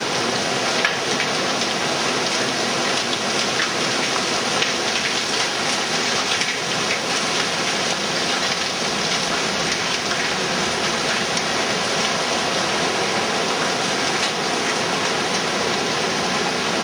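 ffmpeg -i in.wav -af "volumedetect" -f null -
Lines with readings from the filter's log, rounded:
mean_volume: -21.3 dB
max_volume: -3.0 dB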